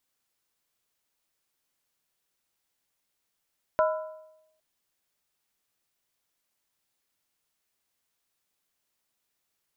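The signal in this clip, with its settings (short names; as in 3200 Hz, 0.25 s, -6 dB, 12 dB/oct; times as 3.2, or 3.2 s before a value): skin hit length 0.81 s, lowest mode 627 Hz, modes 4, decay 0.89 s, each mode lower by 4.5 dB, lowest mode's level -19 dB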